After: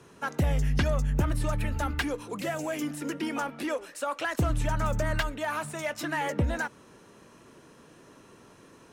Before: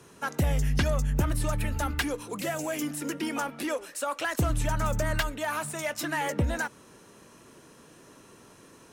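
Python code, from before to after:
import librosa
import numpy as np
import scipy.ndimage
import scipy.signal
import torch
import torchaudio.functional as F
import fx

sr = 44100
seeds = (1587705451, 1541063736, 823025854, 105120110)

y = fx.high_shelf(x, sr, hz=6000.0, db=-8.5)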